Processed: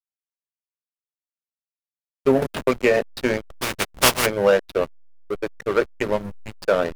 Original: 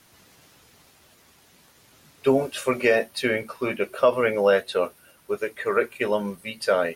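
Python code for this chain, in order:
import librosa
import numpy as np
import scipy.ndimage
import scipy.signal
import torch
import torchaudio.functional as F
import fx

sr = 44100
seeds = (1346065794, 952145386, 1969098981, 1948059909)

y = fx.spec_flatten(x, sr, power=0.19, at=(3.56, 4.25), fade=0.02)
y = fx.backlash(y, sr, play_db=-20.5)
y = fx.band_squash(y, sr, depth_pct=70, at=(2.42, 2.97))
y = y * 10.0 ** (3.0 / 20.0)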